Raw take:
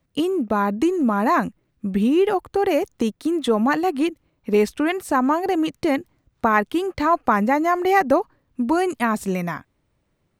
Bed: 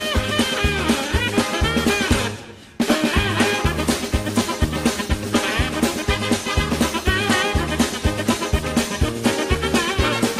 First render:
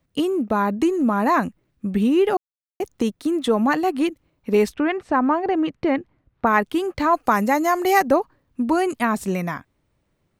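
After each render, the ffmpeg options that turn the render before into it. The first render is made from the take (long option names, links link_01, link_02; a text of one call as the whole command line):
ffmpeg -i in.wav -filter_complex "[0:a]asettb=1/sr,asplit=3[link_01][link_02][link_03];[link_01]atrim=end=4.744[link_04];[link_02]atrim=start=4.74:end=6.47,asetpts=PTS-STARTPTS,afade=type=in:duration=0.004:curve=qsin,afade=type=out:start_time=1.726:duration=0.004:curve=qsin,lowpass=2700[link_05];[link_03]atrim=start=6.466[link_06];[link_04][link_05]acrossfade=duration=0.004:curve1=hsin:curve2=qsin[link_07];[link_07][link_06]acrossfade=duration=0.004:curve1=qsin:curve2=hsin,asettb=1/sr,asplit=3[link_08][link_09][link_10];[link_08]atrim=end=7.144[link_11];[link_09]atrim=start=7.14:end=8.08,asetpts=PTS-STARTPTS,afade=type=in:duration=0.004:curve=qsin,afade=type=out:start_time=0.936:duration=0.004:curve=qsin,bass=frequency=250:gain=-2,treble=frequency=4000:gain=10[link_12];[link_10]atrim=start=8.076[link_13];[link_11][link_12]acrossfade=duration=0.004:curve1=hsin:curve2=qsin[link_14];[link_14][link_13]acrossfade=duration=0.004:curve1=qsin:curve2=hsin,asplit=3[link_15][link_16][link_17];[link_15]atrim=end=2.37,asetpts=PTS-STARTPTS,afade=type=out:start_time=2.366:duration=0.004:curve=hsin[link_18];[link_16]atrim=start=2.37:end=2.8,asetpts=PTS-STARTPTS,volume=0[link_19];[link_17]atrim=start=2.8,asetpts=PTS-STARTPTS,afade=type=in:duration=0.004:curve=hsin[link_20];[link_18][link_19][link_20]concat=n=3:v=0:a=1" out.wav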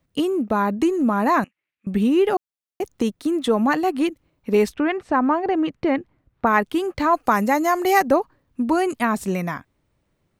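ffmpeg -i in.wav -filter_complex "[0:a]asettb=1/sr,asplit=3[link_01][link_02][link_03];[link_01]atrim=end=1.444[link_04];[link_02]atrim=start=1.44:end=1.87,asetpts=PTS-STARTPTS,afade=type=in:duration=0.004:curve=qsin,afade=type=out:start_time=0.426:duration=0.004:curve=qsin,bandpass=frequency=2400:width_type=q:width=2.7[link_05];[link_03]atrim=start=1.866[link_06];[link_04][link_05]acrossfade=duration=0.004:curve1=hsin:curve2=qsin[link_07];[link_07][link_06]acrossfade=duration=0.004:curve1=qsin:curve2=hsin" out.wav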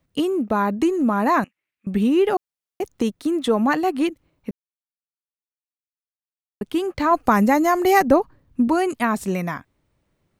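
ffmpeg -i in.wav -filter_complex "[0:a]asettb=1/sr,asplit=3[link_01][link_02][link_03];[link_01]atrim=end=7.114[link_04];[link_02]atrim=start=7.11:end=8.68,asetpts=PTS-STARTPTS,afade=type=in:duration=0.004:curve=qsin,afade=type=out:start_time=1.566:duration=0.004:curve=qsin,lowshelf=frequency=230:gain=10[link_05];[link_03]atrim=start=8.676[link_06];[link_04][link_05]acrossfade=duration=0.004:curve1=hsin:curve2=qsin[link_07];[link_07][link_06]acrossfade=duration=0.004:curve1=qsin:curve2=hsin,asplit=3[link_08][link_09][link_10];[link_08]atrim=end=4.51,asetpts=PTS-STARTPTS,afade=type=out:start_time=4.506:duration=0.004:curve=hsin[link_11];[link_09]atrim=start=4.51:end=6.61,asetpts=PTS-STARTPTS,volume=0[link_12];[link_10]atrim=start=6.61,asetpts=PTS-STARTPTS,afade=type=in:duration=0.004:curve=hsin[link_13];[link_11][link_12][link_13]concat=n=3:v=0:a=1" out.wav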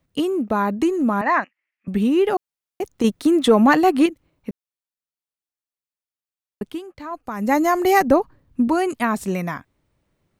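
ffmpeg -i in.wav -filter_complex "[0:a]asettb=1/sr,asplit=3[link_01][link_02][link_03];[link_01]atrim=end=1.214[link_04];[link_02]atrim=start=1.21:end=1.88,asetpts=PTS-STARTPTS,afade=type=in:duration=0.004:curve=qsin,afade=type=out:start_time=0.666:duration=0.004:curve=qsin,highpass=400,equalizer=frequency=450:width_type=q:width=4:gain=-8,equalizer=frequency=1900:width_type=q:width=4:gain=8,equalizer=frequency=3800:width_type=q:width=4:gain=-7,lowpass=frequency=5300:width=0.5412,lowpass=frequency=5300:width=1.3066[link_05];[link_03]atrim=start=1.876[link_06];[link_04][link_05]acrossfade=duration=0.004:curve1=hsin:curve2=qsin[link_07];[link_07][link_06]acrossfade=duration=0.004:curve1=qsin:curve2=hsin,asettb=1/sr,asplit=3[link_08][link_09][link_10];[link_08]atrim=end=3.044[link_11];[link_09]atrim=start=3.04:end=4.06,asetpts=PTS-STARTPTS,afade=type=in:duration=0.004:curve=qsin,afade=type=out:start_time=1.016:duration=0.004:curve=qsin,acontrast=46[link_12];[link_10]atrim=start=4.056[link_13];[link_11][link_12]acrossfade=duration=0.004:curve1=hsin:curve2=qsin[link_14];[link_14][link_13]acrossfade=duration=0.004:curve1=qsin:curve2=hsin,asplit=3[link_15][link_16][link_17];[link_15]atrim=end=6.87,asetpts=PTS-STARTPTS,afade=type=out:start_time=6.66:duration=0.21:curve=qua:silence=0.211349[link_18];[link_16]atrim=start=6.87:end=7.32,asetpts=PTS-STARTPTS,volume=-13.5dB[link_19];[link_17]atrim=start=7.32,asetpts=PTS-STARTPTS,afade=type=in:duration=0.21:curve=qua:silence=0.211349[link_20];[link_18][link_19][link_20]concat=n=3:v=0:a=1" out.wav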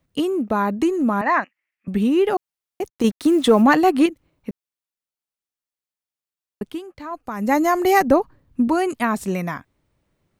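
ffmpeg -i in.wav -filter_complex "[0:a]asplit=3[link_01][link_02][link_03];[link_01]afade=type=out:start_time=2.88:duration=0.02[link_04];[link_02]acrusher=bits=6:mix=0:aa=0.5,afade=type=in:start_time=2.88:duration=0.02,afade=type=out:start_time=3.61:duration=0.02[link_05];[link_03]afade=type=in:start_time=3.61:duration=0.02[link_06];[link_04][link_05][link_06]amix=inputs=3:normalize=0" out.wav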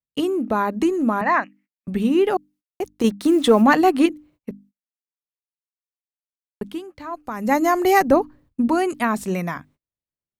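ffmpeg -i in.wav -af "bandreject=frequency=50:width_type=h:width=6,bandreject=frequency=100:width_type=h:width=6,bandreject=frequency=150:width_type=h:width=6,bandreject=frequency=200:width_type=h:width=6,bandreject=frequency=250:width_type=h:width=6,bandreject=frequency=300:width_type=h:width=6,agate=range=-30dB:threshold=-50dB:ratio=16:detection=peak" out.wav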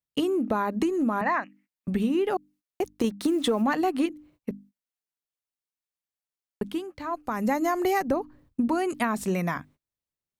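ffmpeg -i in.wav -af "acompressor=threshold=-22dB:ratio=6" out.wav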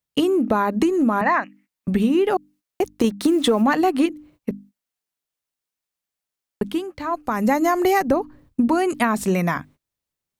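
ffmpeg -i in.wav -af "volume=6.5dB" out.wav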